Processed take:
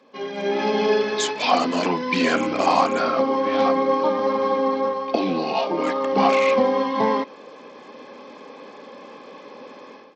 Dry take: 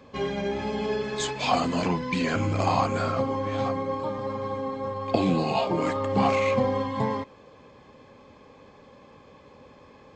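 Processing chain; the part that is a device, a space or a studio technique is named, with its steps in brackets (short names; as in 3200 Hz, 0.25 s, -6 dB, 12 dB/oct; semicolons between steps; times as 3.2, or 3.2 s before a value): Bluetooth headset (HPF 230 Hz 24 dB/oct; AGC gain up to 14.5 dB; downsampling 16000 Hz; gain -3.5 dB; SBC 64 kbps 32000 Hz)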